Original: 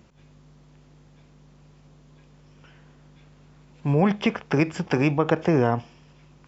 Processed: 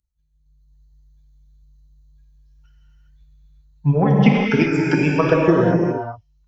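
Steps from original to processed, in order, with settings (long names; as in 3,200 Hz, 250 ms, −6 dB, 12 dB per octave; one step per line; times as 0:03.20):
spectral dynamics exaggerated over time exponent 2
transient designer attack +8 dB, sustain −2 dB
automatic gain control gain up to 14 dB
reverb whose tail is shaped and stops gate 430 ms flat, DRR −3 dB
level −2 dB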